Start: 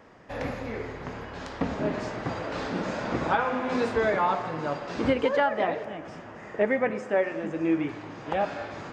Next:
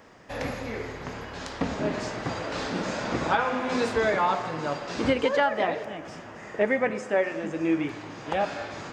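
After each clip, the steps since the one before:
high-shelf EQ 3,700 Hz +10 dB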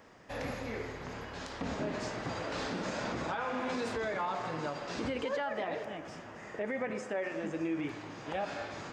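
brickwall limiter −21.5 dBFS, peak gain reduction 11 dB
level −5 dB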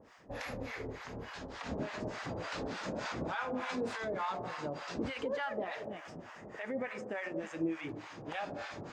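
two-band tremolo in antiphase 3.4 Hz, depth 100%, crossover 760 Hz
level +2.5 dB

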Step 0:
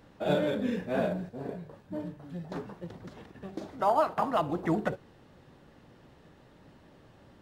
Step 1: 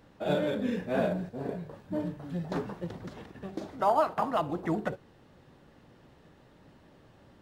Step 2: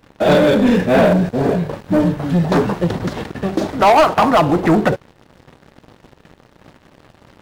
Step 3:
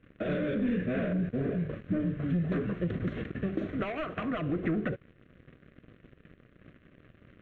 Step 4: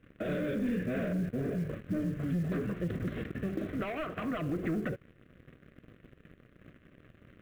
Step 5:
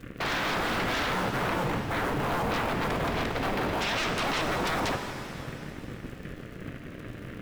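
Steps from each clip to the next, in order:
speech leveller within 5 dB 2 s
leveller curve on the samples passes 3; level +9 dB
downward compressor, threshold −18 dBFS, peak gain reduction 9 dB; high-frequency loss of the air 240 metres; phaser with its sweep stopped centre 2,100 Hz, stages 4; level −7 dB
in parallel at +1 dB: brickwall limiter −28 dBFS, peak gain reduction 8 dB; on the sum: floating-point word with a short mantissa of 4 bits; level −7 dB
sine wavefolder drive 16 dB, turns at −23 dBFS; surface crackle 100 per second −39 dBFS; reverb with rising layers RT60 2.5 s, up +7 semitones, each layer −8 dB, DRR 5.5 dB; level −3.5 dB

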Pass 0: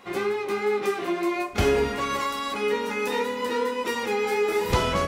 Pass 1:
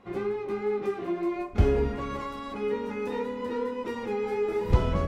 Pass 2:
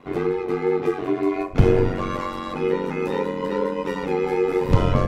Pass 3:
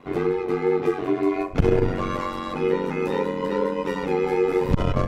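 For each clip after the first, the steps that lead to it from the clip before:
spectral tilt −3.5 dB per octave; level −8 dB
ring modulation 46 Hz; boost into a limiter +11 dB; level −1 dB
saturating transformer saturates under 130 Hz

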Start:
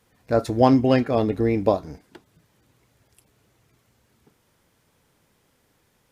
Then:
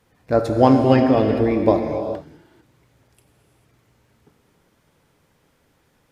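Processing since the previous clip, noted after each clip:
high-shelf EQ 3,900 Hz −6 dB
reverb whose tail is shaped and stops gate 470 ms flat, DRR 4 dB
level +2.5 dB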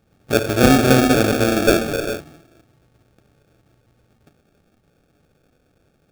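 sample-rate reduction 1,000 Hz, jitter 0%
level +1 dB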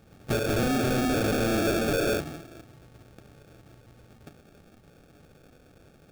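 downward compressor 6 to 1, threshold −23 dBFS, peak gain reduction 15 dB
gain into a clipping stage and back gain 29 dB
level +6 dB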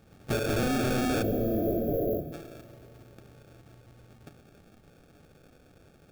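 time-frequency box erased 0:01.22–0:02.33, 740–11,000 Hz
four-comb reverb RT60 3.4 s, combs from 25 ms, DRR 16.5 dB
level −2 dB

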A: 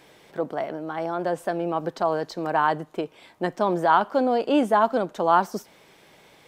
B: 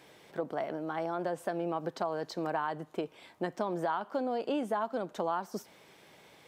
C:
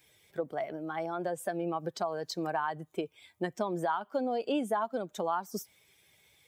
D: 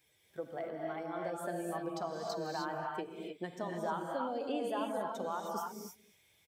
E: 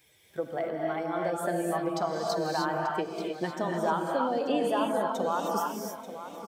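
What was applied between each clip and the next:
downward compressor 6 to 1, threshold −25 dBFS, peak gain reduction 12 dB; high-pass filter 54 Hz; level −4 dB
spectral dynamics exaggerated over time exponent 1.5; high-shelf EQ 5,300 Hz +9.5 dB; level +3 dB
single-tap delay 230 ms −21 dB; reverb whose tail is shaped and stops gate 330 ms rising, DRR −0.5 dB; level −7.5 dB
repeating echo 886 ms, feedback 31%, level −12 dB; level +8.5 dB

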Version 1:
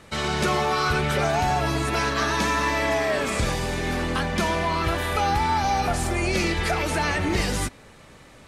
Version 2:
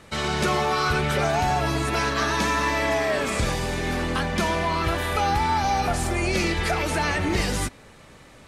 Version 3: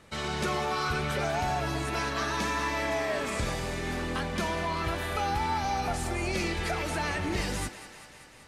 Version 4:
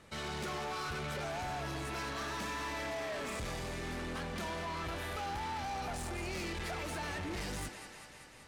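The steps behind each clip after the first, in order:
no processing that can be heard
feedback echo with a high-pass in the loop 194 ms, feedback 71%, high-pass 370 Hz, level −13 dB; level −7 dB
soft clipping −33 dBFS, distortion −9 dB; level −3 dB

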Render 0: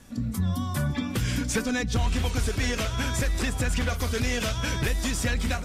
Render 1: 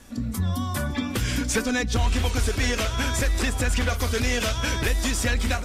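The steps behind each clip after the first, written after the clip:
parametric band 150 Hz −10.5 dB 0.6 octaves
level +3.5 dB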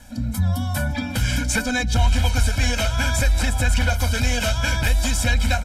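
comb filter 1.3 ms, depth 97%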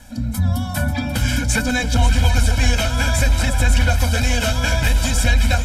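delay that swaps between a low-pass and a high-pass 269 ms, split 900 Hz, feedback 53%, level −5 dB
level +2 dB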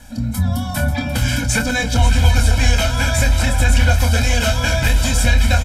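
double-tracking delay 26 ms −7.5 dB
level +1 dB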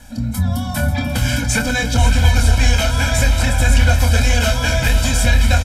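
single-tap delay 489 ms −10.5 dB

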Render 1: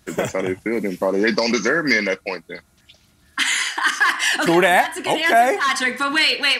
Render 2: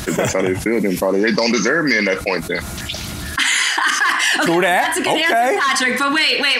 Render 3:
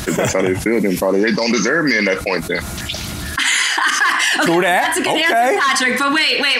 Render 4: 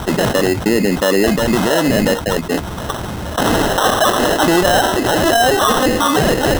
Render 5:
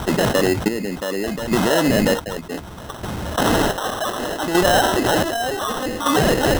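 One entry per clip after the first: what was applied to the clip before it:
envelope flattener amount 70%; level −2.5 dB
boost into a limiter +6 dB; level −4.5 dB
decimation without filtering 19×; level +1.5 dB
square-wave tremolo 0.66 Hz, depth 60%, duty 45%; level −2.5 dB

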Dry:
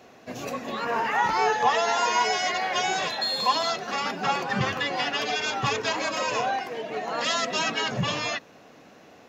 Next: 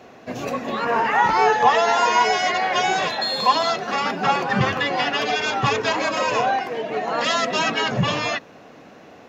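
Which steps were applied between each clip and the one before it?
high-shelf EQ 4,100 Hz −8 dB
level +6.5 dB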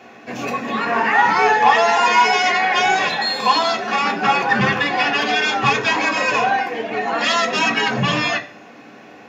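soft clipping −9 dBFS, distortion −21 dB
convolution reverb RT60 0.45 s, pre-delay 3 ms, DRR 3.5 dB
level −1 dB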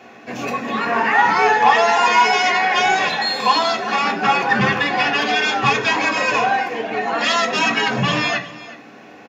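single-tap delay 369 ms −17.5 dB

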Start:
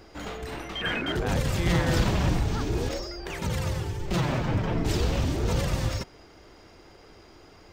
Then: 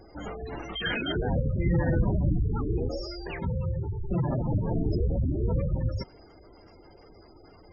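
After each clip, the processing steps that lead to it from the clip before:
gate on every frequency bin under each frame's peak −15 dB strong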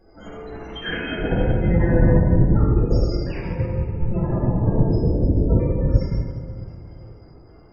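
convolution reverb RT60 2.5 s, pre-delay 4 ms, DRR −8 dB
expander for the loud parts 1.5 to 1, over −26 dBFS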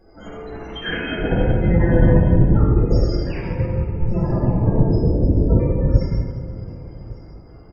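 repeating echo 1,161 ms, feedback 34%, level −22 dB
level +2 dB

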